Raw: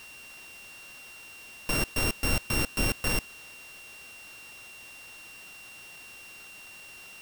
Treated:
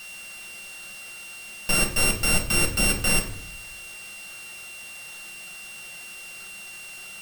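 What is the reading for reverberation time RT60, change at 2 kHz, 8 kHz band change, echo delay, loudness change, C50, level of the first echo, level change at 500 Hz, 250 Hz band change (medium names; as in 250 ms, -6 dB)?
0.65 s, +6.5 dB, +10.5 dB, no echo, +6.5 dB, 9.0 dB, no echo, +4.0 dB, +4.0 dB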